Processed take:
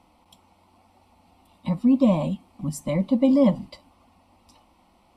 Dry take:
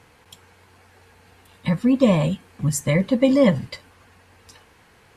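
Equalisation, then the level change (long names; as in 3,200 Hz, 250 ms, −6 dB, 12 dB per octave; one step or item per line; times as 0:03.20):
high-shelf EQ 2,800 Hz −10 dB
phaser with its sweep stopped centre 440 Hz, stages 6
notch filter 6,700 Hz, Q 6.7
0.0 dB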